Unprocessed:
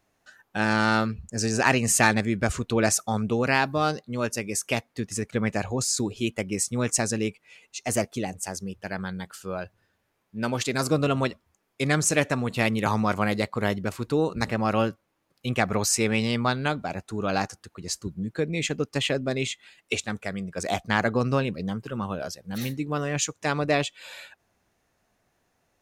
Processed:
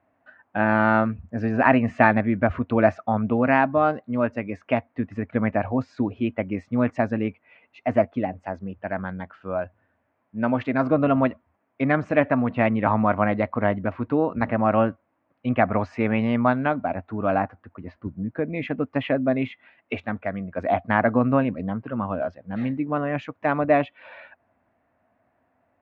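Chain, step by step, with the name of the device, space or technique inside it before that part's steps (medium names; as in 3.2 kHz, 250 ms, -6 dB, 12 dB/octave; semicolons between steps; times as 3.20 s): bass cabinet (cabinet simulation 79–2200 Hz, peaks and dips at 88 Hz +4 dB, 160 Hz -5 dB, 260 Hz +8 dB, 400 Hz -6 dB, 650 Hz +8 dB, 1 kHz +3 dB); 17.34–18.48 s: distance through air 210 m; trim +1.5 dB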